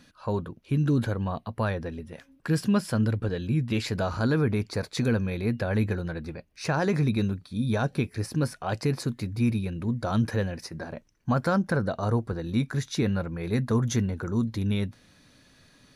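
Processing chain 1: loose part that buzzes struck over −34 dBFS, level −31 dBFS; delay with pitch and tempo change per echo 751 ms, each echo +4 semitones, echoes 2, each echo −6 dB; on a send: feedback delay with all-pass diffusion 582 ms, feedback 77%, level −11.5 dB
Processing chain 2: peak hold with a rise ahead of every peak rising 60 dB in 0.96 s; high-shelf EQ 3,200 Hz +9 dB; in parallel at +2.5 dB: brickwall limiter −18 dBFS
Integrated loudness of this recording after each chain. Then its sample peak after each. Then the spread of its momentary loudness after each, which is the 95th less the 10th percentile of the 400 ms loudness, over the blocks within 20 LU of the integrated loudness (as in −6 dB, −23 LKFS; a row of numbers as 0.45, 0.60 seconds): −26.5, −19.0 LKFS; −11.0, −4.5 dBFS; 7, 6 LU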